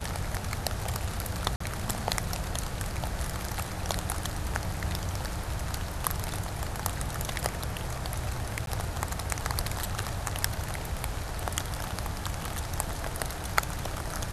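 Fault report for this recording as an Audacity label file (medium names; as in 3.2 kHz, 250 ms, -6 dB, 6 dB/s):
1.560000	1.600000	dropout 44 ms
8.660000	8.670000	dropout 12 ms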